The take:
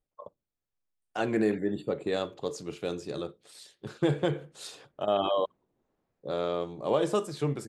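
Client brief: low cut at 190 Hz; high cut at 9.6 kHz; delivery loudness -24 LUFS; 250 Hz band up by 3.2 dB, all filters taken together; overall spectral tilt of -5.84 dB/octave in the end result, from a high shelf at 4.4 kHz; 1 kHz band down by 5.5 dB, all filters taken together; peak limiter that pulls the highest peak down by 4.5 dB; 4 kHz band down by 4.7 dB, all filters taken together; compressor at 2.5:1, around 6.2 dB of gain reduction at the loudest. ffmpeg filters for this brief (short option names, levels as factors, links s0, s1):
-af "highpass=190,lowpass=9600,equalizer=f=250:t=o:g=7,equalizer=f=1000:t=o:g=-8.5,equalizer=f=4000:t=o:g=-7.5,highshelf=f=4400:g=4,acompressor=threshold=0.0398:ratio=2.5,volume=3.76,alimiter=limit=0.266:level=0:latency=1"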